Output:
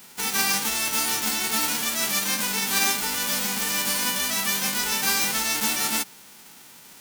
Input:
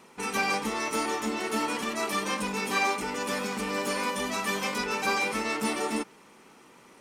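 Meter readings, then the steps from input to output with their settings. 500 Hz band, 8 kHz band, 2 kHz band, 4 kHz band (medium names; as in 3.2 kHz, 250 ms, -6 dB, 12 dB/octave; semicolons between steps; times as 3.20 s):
-6.0 dB, +13.5 dB, +3.0 dB, +10.0 dB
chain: formants flattened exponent 0.1; in parallel at -1 dB: peak limiter -25.5 dBFS, peak gain reduction 11.5 dB; on the sum: trim +1.5 dB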